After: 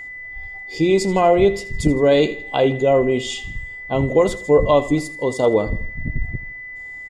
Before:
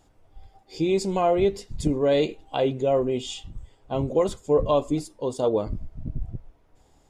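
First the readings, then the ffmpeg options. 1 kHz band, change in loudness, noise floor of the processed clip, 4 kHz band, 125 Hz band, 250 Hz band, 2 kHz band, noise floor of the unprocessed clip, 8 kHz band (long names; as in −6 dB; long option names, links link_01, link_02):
+6.5 dB, +6.5 dB, −34 dBFS, +6.5 dB, +6.5 dB, +6.5 dB, +16.0 dB, −61 dBFS, +6.5 dB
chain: -af "aecho=1:1:81|162|243|324:0.141|0.0607|0.0261|0.0112,aeval=exprs='val(0)+0.0126*sin(2*PI*2000*n/s)':channel_layout=same,volume=6.5dB"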